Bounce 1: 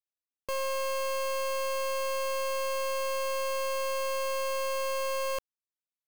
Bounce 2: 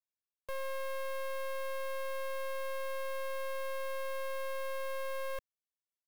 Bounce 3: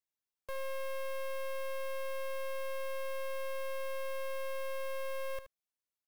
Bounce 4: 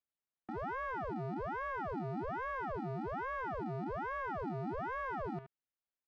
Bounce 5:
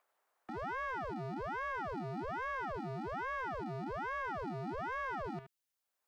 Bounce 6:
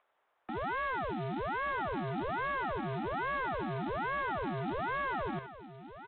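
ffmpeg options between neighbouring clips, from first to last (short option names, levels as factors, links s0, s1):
-filter_complex "[0:a]aecho=1:1:1.8:0.65,acrossover=split=210[s0][s1];[s1]aeval=exprs='clip(val(0),-1,0.0168)':c=same[s2];[s0][s2]amix=inputs=2:normalize=0,volume=0.355"
-af "aecho=1:1:75:0.237,volume=0.891"
-af "aeval=exprs='0.0266*(abs(mod(val(0)/0.0266+3,4)-2)-1)':c=same,lowpass=1900,aeval=exprs='val(0)*sin(2*PI*630*n/s+630*0.8/1.2*sin(2*PI*1.2*n/s))':c=same,volume=1.19"
-filter_complex "[0:a]highshelf=f=2300:g=11.5,acrossover=split=280|410|1400[s0][s1][s2][s3];[s2]acompressor=mode=upward:threshold=0.00126:ratio=2.5[s4];[s0][s1][s4][s3]amix=inputs=4:normalize=0,volume=0.794"
-af "aresample=8000,acrusher=bits=4:mode=log:mix=0:aa=0.000001,aresample=44100,aecho=1:1:1169:0.211,volume=1.68"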